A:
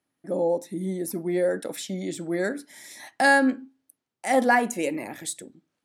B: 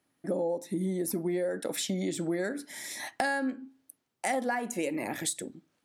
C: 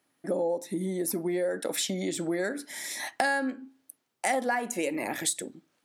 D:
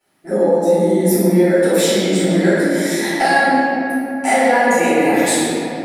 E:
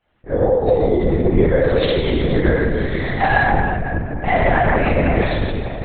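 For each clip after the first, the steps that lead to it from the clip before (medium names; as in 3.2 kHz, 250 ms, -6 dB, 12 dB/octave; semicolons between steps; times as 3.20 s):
compression 10:1, threshold -32 dBFS, peak gain reduction 17.5 dB; trim +4.5 dB
bass shelf 210 Hz -9 dB; trim +3.5 dB
reverberation RT60 3.0 s, pre-delay 3 ms, DRR -18 dB; trim -5.5 dB
LPC vocoder at 8 kHz whisper; trim -1.5 dB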